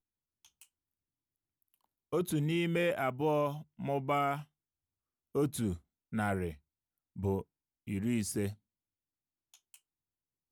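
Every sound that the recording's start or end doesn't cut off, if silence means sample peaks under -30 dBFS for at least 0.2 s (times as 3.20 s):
2.13–3.50 s
3.85–4.35 s
5.35–5.72 s
6.15–6.48 s
7.24–7.39 s
7.90–8.49 s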